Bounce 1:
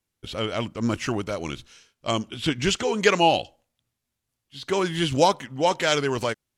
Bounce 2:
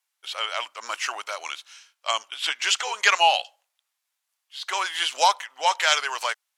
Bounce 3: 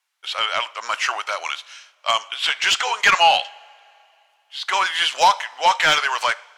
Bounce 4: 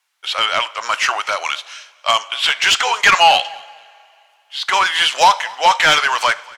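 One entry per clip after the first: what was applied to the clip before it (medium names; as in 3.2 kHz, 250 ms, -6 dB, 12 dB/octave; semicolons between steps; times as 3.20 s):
high-pass 800 Hz 24 dB/octave; trim +4 dB
two-slope reverb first 0.54 s, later 2.8 s, from -18 dB, DRR 17 dB; overdrive pedal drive 16 dB, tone 3.1 kHz, clips at -1 dBFS; trim -1.5 dB
in parallel at -3.5 dB: saturation -17.5 dBFS, distortion -9 dB; on the sum: feedback delay 233 ms, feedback 28%, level -24 dB; trim +1.5 dB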